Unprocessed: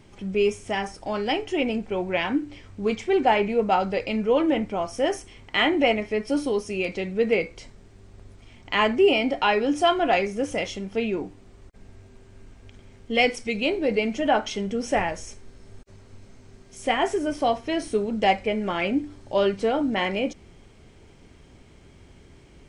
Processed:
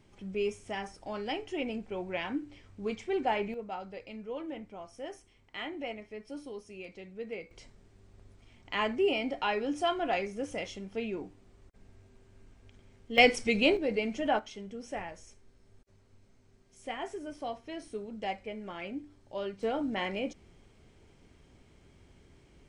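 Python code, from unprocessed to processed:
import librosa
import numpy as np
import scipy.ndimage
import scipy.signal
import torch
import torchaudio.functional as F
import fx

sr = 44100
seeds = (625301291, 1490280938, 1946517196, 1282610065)

y = fx.gain(x, sr, db=fx.steps((0.0, -10.0), (3.54, -18.0), (7.51, -9.5), (13.18, -0.5), (13.77, -7.5), (14.39, -15.0), (19.63, -8.5)))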